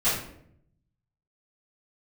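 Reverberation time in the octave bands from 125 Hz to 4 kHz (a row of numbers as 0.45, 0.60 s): 1.3, 0.90, 0.80, 0.60, 0.55, 0.45 s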